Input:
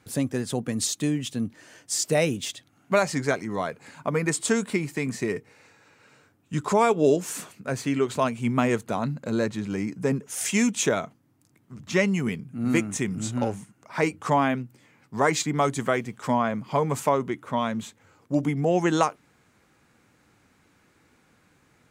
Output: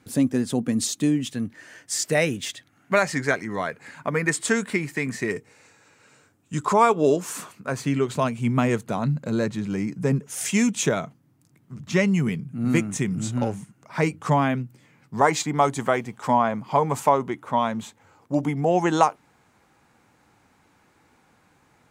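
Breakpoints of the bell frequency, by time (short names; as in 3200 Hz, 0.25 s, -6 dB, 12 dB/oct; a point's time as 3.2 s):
bell +7.5 dB 0.69 oct
250 Hz
from 1.29 s 1800 Hz
from 5.31 s 7600 Hz
from 6.65 s 1100 Hz
from 7.8 s 150 Hz
from 15.21 s 850 Hz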